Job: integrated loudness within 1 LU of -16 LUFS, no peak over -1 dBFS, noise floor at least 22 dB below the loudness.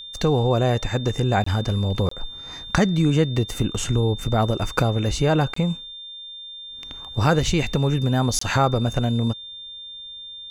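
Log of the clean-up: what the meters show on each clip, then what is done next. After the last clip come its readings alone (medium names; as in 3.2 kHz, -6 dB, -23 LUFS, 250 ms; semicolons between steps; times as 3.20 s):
dropouts 4; longest dropout 24 ms; steady tone 3.6 kHz; tone level -35 dBFS; loudness -22.0 LUFS; peak level -2.0 dBFS; loudness target -16.0 LUFS
-> interpolate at 1.44/2.09/5.54/8.39 s, 24 ms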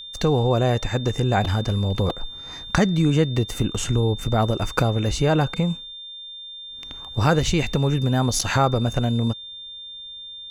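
dropouts 0; steady tone 3.6 kHz; tone level -35 dBFS
-> band-stop 3.6 kHz, Q 30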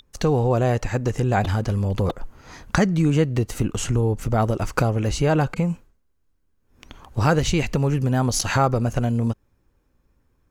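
steady tone not found; loudness -22.0 LUFS; peak level -2.0 dBFS; loudness target -16.0 LUFS
-> trim +6 dB; peak limiter -1 dBFS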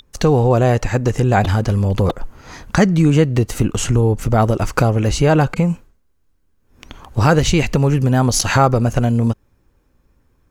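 loudness -16.0 LUFS; peak level -1.0 dBFS; noise floor -61 dBFS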